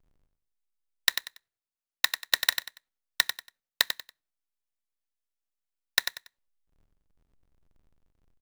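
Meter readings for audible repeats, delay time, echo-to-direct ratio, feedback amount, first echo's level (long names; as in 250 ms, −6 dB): 3, 94 ms, −7.5 dB, 27%, −8.0 dB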